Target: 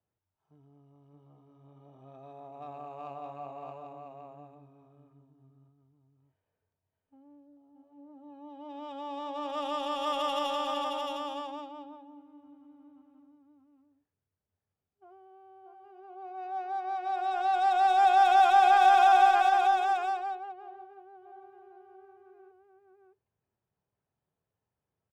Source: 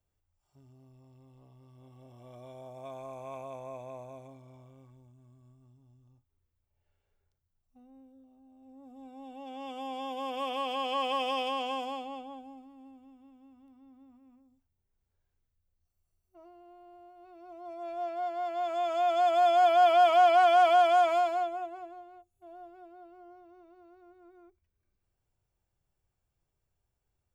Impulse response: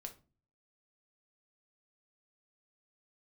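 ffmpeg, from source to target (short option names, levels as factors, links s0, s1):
-af "highpass=130,bandreject=f=3700:w=27,adynamicsmooth=sensitivity=6:basefreq=2300,aecho=1:1:678:0.631,asetrate=48000,aresample=44100"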